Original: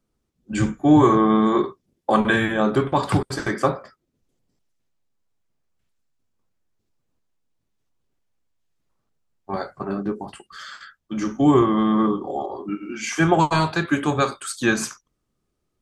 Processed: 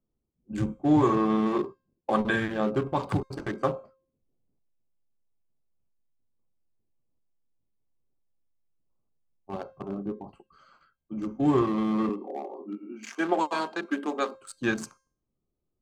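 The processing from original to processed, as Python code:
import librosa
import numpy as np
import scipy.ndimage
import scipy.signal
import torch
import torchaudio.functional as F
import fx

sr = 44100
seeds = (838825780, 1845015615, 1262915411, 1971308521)

y = fx.wiener(x, sr, points=25)
y = fx.ellip_highpass(y, sr, hz=210.0, order=4, stop_db=40, at=(12.09, 14.35))
y = fx.comb_fb(y, sr, f0_hz=530.0, decay_s=0.47, harmonics='all', damping=0.0, mix_pct=50)
y = y * librosa.db_to_amplitude(-1.0)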